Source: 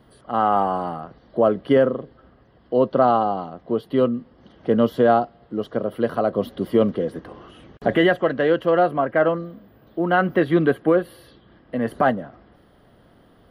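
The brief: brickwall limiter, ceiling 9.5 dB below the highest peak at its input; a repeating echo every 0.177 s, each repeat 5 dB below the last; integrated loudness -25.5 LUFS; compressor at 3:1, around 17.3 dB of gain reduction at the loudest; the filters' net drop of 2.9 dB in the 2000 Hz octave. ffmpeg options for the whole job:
-af "equalizer=f=2k:t=o:g=-4,acompressor=threshold=-37dB:ratio=3,alimiter=level_in=4dB:limit=-24dB:level=0:latency=1,volume=-4dB,aecho=1:1:177|354|531|708|885|1062|1239:0.562|0.315|0.176|0.0988|0.0553|0.031|0.0173,volume=13dB"

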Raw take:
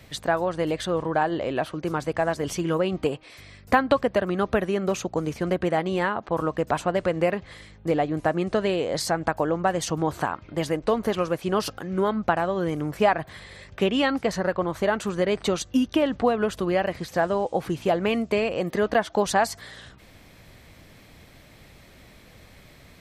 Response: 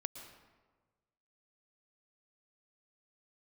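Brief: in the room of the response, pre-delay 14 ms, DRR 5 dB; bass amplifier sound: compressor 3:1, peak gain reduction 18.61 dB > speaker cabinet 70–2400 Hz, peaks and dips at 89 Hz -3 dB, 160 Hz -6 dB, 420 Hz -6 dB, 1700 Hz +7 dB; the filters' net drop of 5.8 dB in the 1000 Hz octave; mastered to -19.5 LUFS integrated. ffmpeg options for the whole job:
-filter_complex "[0:a]equalizer=f=1k:t=o:g=-8.5,asplit=2[a][b];[1:a]atrim=start_sample=2205,adelay=14[c];[b][c]afir=irnorm=-1:irlink=0,volume=-3.5dB[d];[a][d]amix=inputs=2:normalize=0,acompressor=threshold=-40dB:ratio=3,highpass=f=70:w=0.5412,highpass=f=70:w=1.3066,equalizer=f=89:t=q:w=4:g=-3,equalizer=f=160:t=q:w=4:g=-6,equalizer=f=420:t=q:w=4:g=-6,equalizer=f=1.7k:t=q:w=4:g=7,lowpass=f=2.4k:w=0.5412,lowpass=f=2.4k:w=1.3066,volume=21.5dB"

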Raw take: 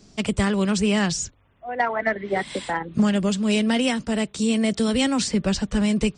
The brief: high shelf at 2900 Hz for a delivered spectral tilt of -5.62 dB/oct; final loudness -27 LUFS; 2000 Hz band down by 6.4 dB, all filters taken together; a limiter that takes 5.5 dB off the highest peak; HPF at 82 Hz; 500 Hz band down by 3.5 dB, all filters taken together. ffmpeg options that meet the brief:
-af "highpass=82,equalizer=f=500:t=o:g=-4,equalizer=f=2k:t=o:g=-4.5,highshelf=f=2.9k:g=-8,volume=-1dB,alimiter=limit=-18dB:level=0:latency=1"

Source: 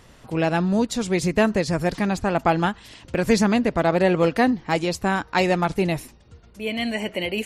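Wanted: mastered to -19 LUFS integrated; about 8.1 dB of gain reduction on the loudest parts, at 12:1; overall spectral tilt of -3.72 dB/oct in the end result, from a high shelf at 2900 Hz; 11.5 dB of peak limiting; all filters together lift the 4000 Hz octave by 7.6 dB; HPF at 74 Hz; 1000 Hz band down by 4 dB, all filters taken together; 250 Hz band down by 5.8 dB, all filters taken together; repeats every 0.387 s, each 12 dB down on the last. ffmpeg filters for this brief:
-af "highpass=74,equalizer=f=250:t=o:g=-8,equalizer=f=1k:t=o:g=-6,highshelf=f=2.9k:g=6,equalizer=f=4k:t=o:g=5.5,acompressor=threshold=-24dB:ratio=12,alimiter=limit=-21.5dB:level=0:latency=1,aecho=1:1:387|774|1161:0.251|0.0628|0.0157,volume=13dB"

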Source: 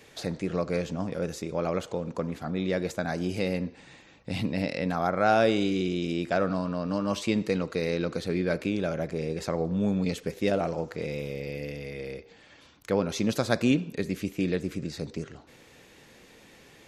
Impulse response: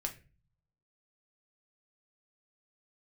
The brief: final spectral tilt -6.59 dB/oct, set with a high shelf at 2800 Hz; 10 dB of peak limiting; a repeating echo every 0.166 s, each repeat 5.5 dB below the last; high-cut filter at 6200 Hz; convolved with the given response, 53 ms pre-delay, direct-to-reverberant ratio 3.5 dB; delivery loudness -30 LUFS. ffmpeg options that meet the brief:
-filter_complex "[0:a]lowpass=6.2k,highshelf=f=2.8k:g=-7,alimiter=limit=-20dB:level=0:latency=1,aecho=1:1:166|332|498|664|830|996|1162:0.531|0.281|0.149|0.079|0.0419|0.0222|0.0118,asplit=2[a][b];[1:a]atrim=start_sample=2205,adelay=53[c];[b][c]afir=irnorm=-1:irlink=0,volume=-4dB[d];[a][d]amix=inputs=2:normalize=0,volume=-0.5dB"

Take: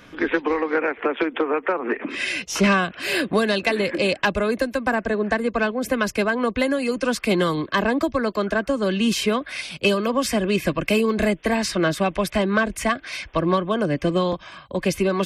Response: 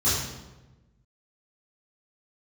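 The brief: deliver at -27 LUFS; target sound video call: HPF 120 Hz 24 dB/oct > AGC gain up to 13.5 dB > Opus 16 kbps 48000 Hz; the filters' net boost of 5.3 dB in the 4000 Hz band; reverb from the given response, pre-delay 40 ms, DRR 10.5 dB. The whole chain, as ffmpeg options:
-filter_complex "[0:a]equalizer=f=4k:t=o:g=7,asplit=2[a][b];[1:a]atrim=start_sample=2205,adelay=40[c];[b][c]afir=irnorm=-1:irlink=0,volume=-23.5dB[d];[a][d]amix=inputs=2:normalize=0,highpass=f=120:w=0.5412,highpass=f=120:w=1.3066,dynaudnorm=m=13.5dB,volume=-5dB" -ar 48000 -c:a libopus -b:a 16k

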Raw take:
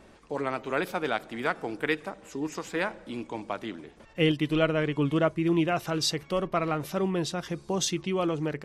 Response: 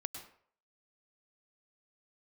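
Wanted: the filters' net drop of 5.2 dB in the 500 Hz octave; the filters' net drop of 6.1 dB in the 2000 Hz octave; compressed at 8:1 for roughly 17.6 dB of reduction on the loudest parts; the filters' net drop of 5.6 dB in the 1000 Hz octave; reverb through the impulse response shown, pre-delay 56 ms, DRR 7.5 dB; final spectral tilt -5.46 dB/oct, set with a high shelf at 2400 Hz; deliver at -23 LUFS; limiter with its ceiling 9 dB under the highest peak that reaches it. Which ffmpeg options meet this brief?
-filter_complex "[0:a]equalizer=f=500:t=o:g=-5.5,equalizer=f=1k:t=o:g=-3.5,equalizer=f=2k:t=o:g=-3,highshelf=f=2.4k:g=-7,acompressor=threshold=-42dB:ratio=8,alimiter=level_in=14dB:limit=-24dB:level=0:latency=1,volume=-14dB,asplit=2[a][b];[1:a]atrim=start_sample=2205,adelay=56[c];[b][c]afir=irnorm=-1:irlink=0,volume=-6dB[d];[a][d]amix=inputs=2:normalize=0,volume=25dB"

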